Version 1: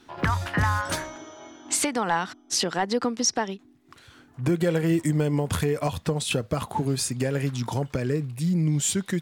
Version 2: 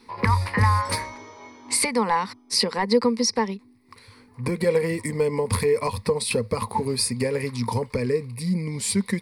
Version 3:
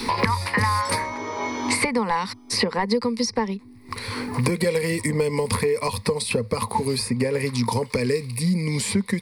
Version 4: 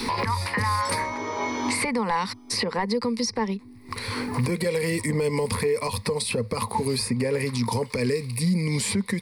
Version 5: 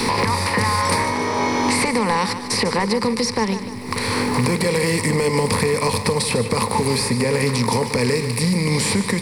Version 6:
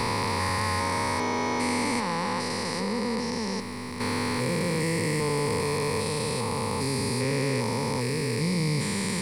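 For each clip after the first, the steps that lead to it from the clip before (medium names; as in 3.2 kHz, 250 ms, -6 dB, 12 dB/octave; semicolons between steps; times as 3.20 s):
rippled EQ curve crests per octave 0.91, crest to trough 15 dB
three bands compressed up and down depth 100%
peak limiter -16 dBFS, peak gain reduction 10.5 dB
spectral levelling over time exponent 0.6; two-band feedback delay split 400 Hz, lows 109 ms, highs 149 ms, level -11 dB; trim +2 dB
spectrogram pixelated in time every 400 ms; trim -5.5 dB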